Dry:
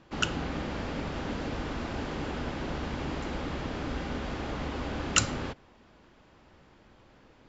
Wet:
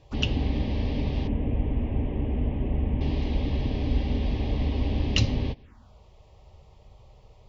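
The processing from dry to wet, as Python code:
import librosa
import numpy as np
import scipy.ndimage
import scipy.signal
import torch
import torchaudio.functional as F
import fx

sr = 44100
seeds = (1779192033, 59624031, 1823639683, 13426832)

y = fx.delta_mod(x, sr, bps=16000, step_db=-48.0, at=(1.27, 3.01))
y = fx.env_phaser(y, sr, low_hz=210.0, high_hz=1400.0, full_db=-36.0)
y = fx.low_shelf(y, sr, hz=150.0, db=11.5)
y = fx.notch_comb(y, sr, f0_hz=170.0)
y = y * librosa.db_to_amplitude(3.5)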